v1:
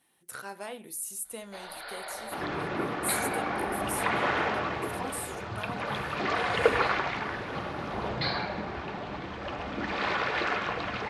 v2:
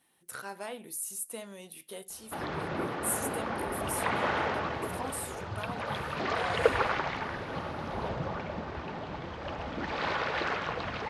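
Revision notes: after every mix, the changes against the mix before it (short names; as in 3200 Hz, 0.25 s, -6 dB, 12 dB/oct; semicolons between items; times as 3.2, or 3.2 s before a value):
first sound: muted; reverb: off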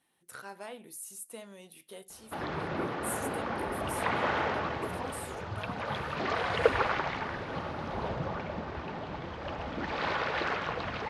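speech -3.5 dB; master: add high shelf 9700 Hz -6.5 dB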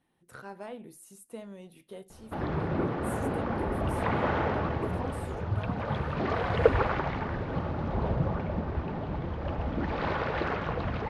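master: add tilt -3 dB/oct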